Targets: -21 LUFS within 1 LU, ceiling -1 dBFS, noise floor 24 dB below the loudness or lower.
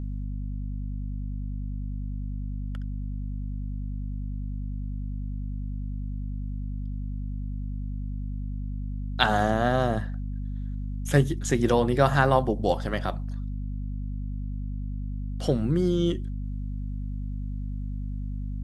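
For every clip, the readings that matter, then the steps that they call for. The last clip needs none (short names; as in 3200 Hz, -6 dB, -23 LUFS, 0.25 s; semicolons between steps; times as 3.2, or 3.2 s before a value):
hum 50 Hz; harmonics up to 250 Hz; hum level -29 dBFS; loudness -29.5 LUFS; peak -2.0 dBFS; loudness target -21.0 LUFS
-> notches 50/100/150/200/250 Hz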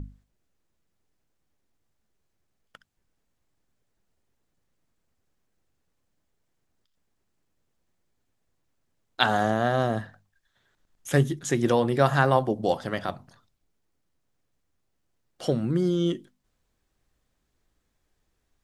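hum none; loudness -25.0 LUFS; peak -2.0 dBFS; loudness target -21.0 LUFS
-> gain +4 dB; limiter -1 dBFS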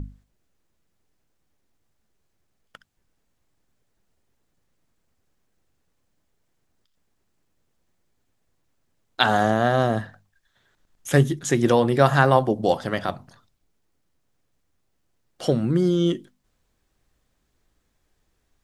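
loudness -21.0 LUFS; peak -1.0 dBFS; noise floor -72 dBFS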